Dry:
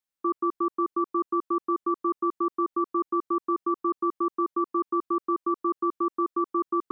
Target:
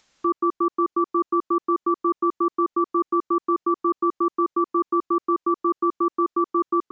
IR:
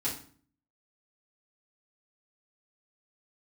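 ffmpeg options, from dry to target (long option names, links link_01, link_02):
-af "acompressor=mode=upward:threshold=-45dB:ratio=2.5,aresample=16000,aresample=44100,volume=4.5dB"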